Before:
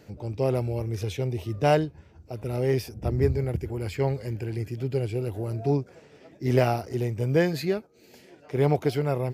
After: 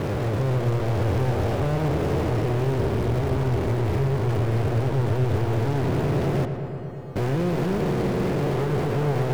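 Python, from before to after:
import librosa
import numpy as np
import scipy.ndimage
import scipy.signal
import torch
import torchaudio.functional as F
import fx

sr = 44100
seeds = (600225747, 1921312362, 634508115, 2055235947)

y = fx.spec_blur(x, sr, span_ms=1430.0)
y = fx.quant_companded(y, sr, bits=2)
y = fx.high_shelf(y, sr, hz=2100.0, db=-10.0)
y = fx.comb_fb(y, sr, f0_hz=170.0, decay_s=0.95, harmonics='odd', damping=0.0, mix_pct=100, at=(6.45, 7.16))
y = fx.high_shelf(y, sr, hz=6000.0, db=-5.5)
y = fx.echo_filtered(y, sr, ms=116, feedback_pct=83, hz=3900.0, wet_db=-10)
y = y * 10.0 ** (3.0 / 20.0)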